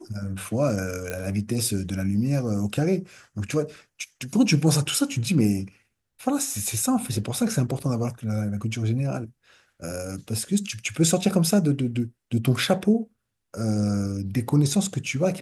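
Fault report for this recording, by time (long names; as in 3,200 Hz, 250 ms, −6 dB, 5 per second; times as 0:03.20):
0:01.10: click −15 dBFS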